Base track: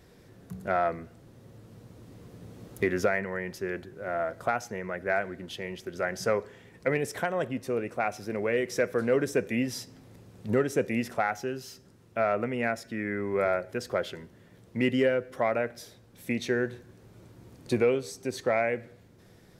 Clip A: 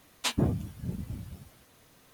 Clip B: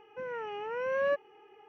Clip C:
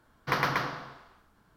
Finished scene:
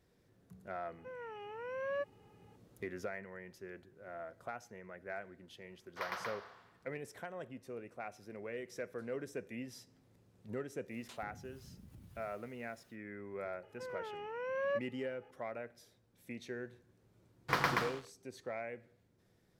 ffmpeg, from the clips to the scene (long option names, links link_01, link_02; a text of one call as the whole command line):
ffmpeg -i bed.wav -i cue0.wav -i cue1.wav -i cue2.wav -filter_complex "[2:a]asplit=2[link_01][link_02];[3:a]asplit=2[link_03][link_04];[0:a]volume=-16dB[link_05];[link_03]highpass=frequency=480:width=0.5412,highpass=frequency=480:width=1.3066[link_06];[1:a]acompressor=threshold=-41dB:ratio=6:attack=3.2:release=140:knee=1:detection=peak[link_07];[link_04]aeval=exprs='sgn(val(0))*max(abs(val(0))-0.01,0)':channel_layout=same[link_08];[link_01]atrim=end=1.68,asetpts=PTS-STARTPTS,volume=-9dB,afade=type=in:duration=0.004:curve=hsin,afade=type=out:start_time=1.676:duration=0.004:curve=hsin,adelay=880[link_09];[link_06]atrim=end=1.56,asetpts=PTS-STARTPTS,volume=-13.5dB,afade=type=in:duration=0.004:curve=hsin,afade=type=out:start_time=1.556:duration=0.004:curve=hsin,adelay=250929S[link_10];[link_07]atrim=end=2.13,asetpts=PTS-STARTPTS,volume=-10.5dB,afade=type=in:duration=0.1,afade=type=out:start_time=2.03:duration=0.1,adelay=10850[link_11];[link_02]atrim=end=1.68,asetpts=PTS-STARTPTS,volume=-6.5dB,afade=type=in:duration=0.004:curve=hsin,afade=type=out:start_time=1.676:duration=0.004:curve=hsin,adelay=13630[link_12];[link_08]atrim=end=1.56,asetpts=PTS-STARTPTS,volume=-3dB,afade=type=in:duration=0.004:curve=hsin,afade=type=out:start_time=1.556:duration=0.004:curve=hsin,adelay=17210[link_13];[link_05][link_09][link_10][link_11][link_12][link_13]amix=inputs=6:normalize=0" out.wav